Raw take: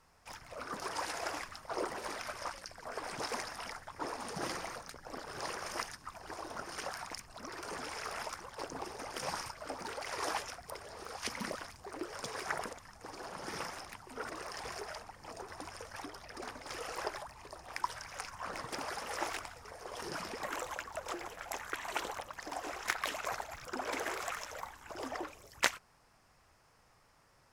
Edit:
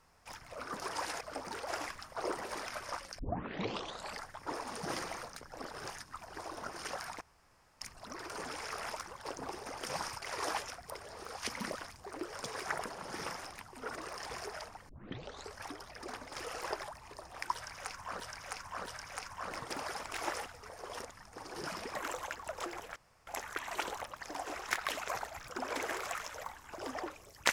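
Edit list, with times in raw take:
2.72 s: tape start 1.04 s
5.43–5.83 s: delete
7.14 s: insert room tone 0.60 s
9.55–10.02 s: move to 1.21 s
12.70–13.24 s: move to 20.04 s
15.23 s: tape start 0.67 s
17.88–18.54 s: loop, 3 plays
19.05–19.48 s: reverse
21.44 s: insert room tone 0.31 s

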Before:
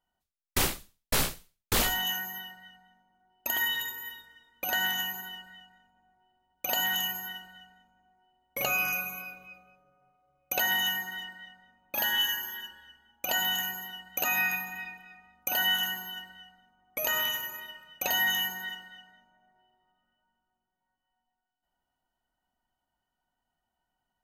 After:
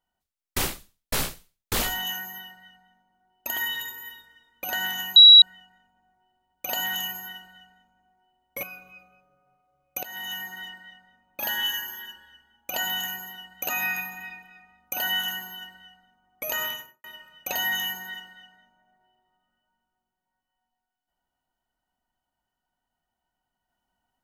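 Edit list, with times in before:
5.16–5.42 s: bleep 3.89 kHz -6.5 dBFS
8.63–9.18 s: delete
10.58–11.16 s: fade in, from -18.5 dB
17.17–17.59 s: studio fade out

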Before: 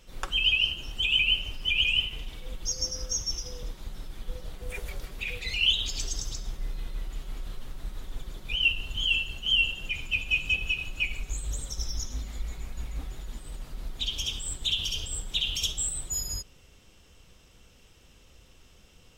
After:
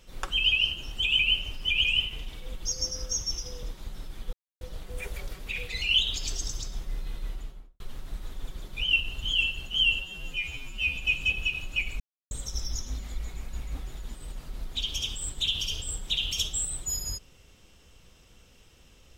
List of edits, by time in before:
4.33 s: insert silence 0.28 s
7.00–7.52 s: studio fade out
9.72–10.20 s: stretch 2×
11.24–11.55 s: mute

